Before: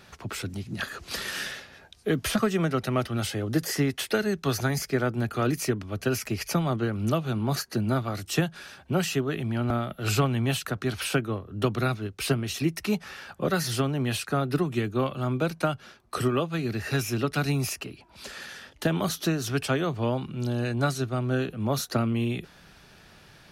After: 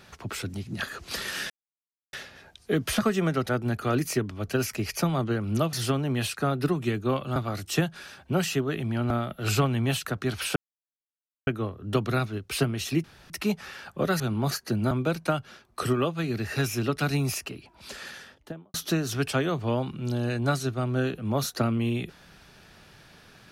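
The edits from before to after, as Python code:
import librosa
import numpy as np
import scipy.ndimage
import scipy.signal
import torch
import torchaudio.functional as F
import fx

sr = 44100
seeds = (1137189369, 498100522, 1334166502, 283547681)

y = fx.studio_fade_out(x, sr, start_s=18.41, length_s=0.68)
y = fx.edit(y, sr, fx.insert_silence(at_s=1.5, length_s=0.63),
    fx.cut(start_s=2.86, length_s=2.15),
    fx.swap(start_s=7.25, length_s=0.71, other_s=13.63, other_length_s=1.63),
    fx.insert_silence(at_s=11.16, length_s=0.91),
    fx.insert_room_tone(at_s=12.73, length_s=0.26), tone=tone)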